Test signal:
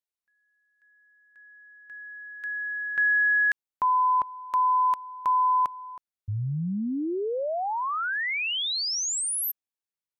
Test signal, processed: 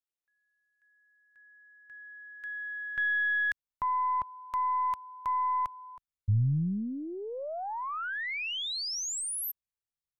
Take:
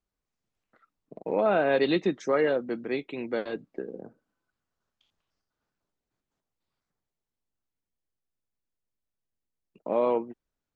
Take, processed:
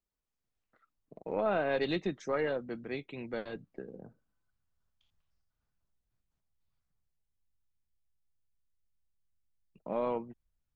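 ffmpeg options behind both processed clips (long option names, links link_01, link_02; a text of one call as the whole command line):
ffmpeg -i in.wav -af "asubboost=boost=6:cutoff=130,aeval=exprs='0.2*(cos(1*acos(clip(val(0)/0.2,-1,1)))-cos(1*PI/2))+0.0178*(cos(2*acos(clip(val(0)/0.2,-1,1)))-cos(2*PI/2))':channel_layout=same,volume=-6dB" out.wav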